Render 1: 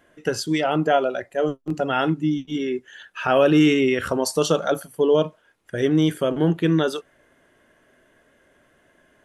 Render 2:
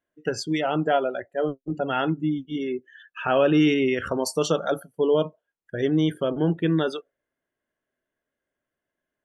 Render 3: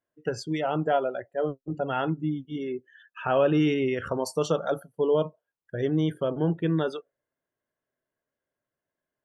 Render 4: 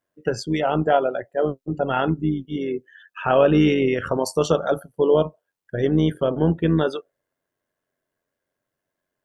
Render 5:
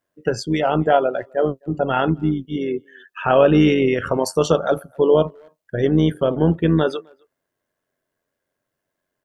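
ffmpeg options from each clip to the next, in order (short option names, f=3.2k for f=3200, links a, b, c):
-af "afftdn=nr=23:nf=-37,volume=-3dB"
-af "equalizer=f=125:t=o:w=1:g=8,equalizer=f=500:t=o:w=1:g=4,equalizer=f=1k:t=o:w=1:g=5,volume=-7dB"
-af "tremolo=f=92:d=0.462,volume=8dB"
-filter_complex "[0:a]asplit=2[a][b];[b]adelay=260,highpass=300,lowpass=3.4k,asoftclip=type=hard:threshold=-14.5dB,volume=-29dB[c];[a][c]amix=inputs=2:normalize=0,volume=2.5dB"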